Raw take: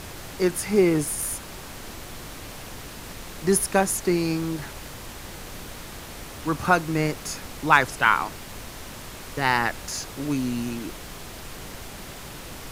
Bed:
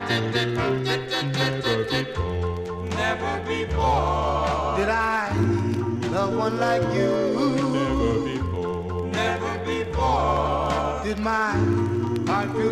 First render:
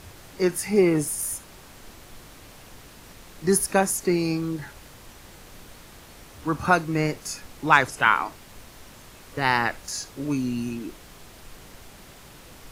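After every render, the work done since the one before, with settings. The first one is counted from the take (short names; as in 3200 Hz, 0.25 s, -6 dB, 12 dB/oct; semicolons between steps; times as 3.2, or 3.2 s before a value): noise print and reduce 8 dB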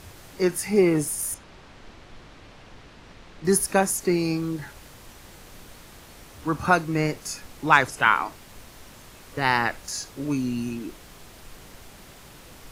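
1.34–3.45 LPF 4100 Hz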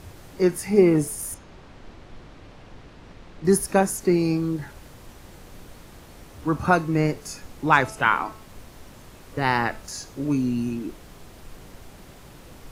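tilt shelf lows +3.5 dB; de-hum 218 Hz, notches 31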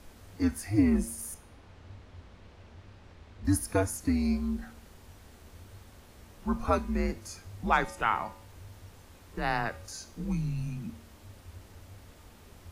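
resonator 330 Hz, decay 0.6 s, mix 60%; frequency shift -100 Hz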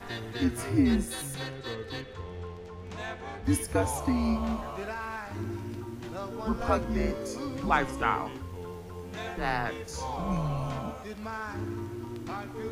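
add bed -14 dB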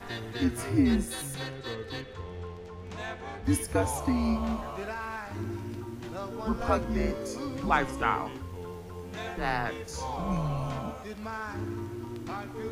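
nothing audible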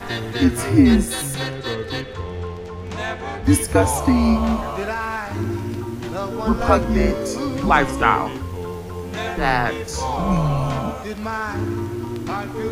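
gain +11 dB; limiter -1 dBFS, peak gain reduction 3 dB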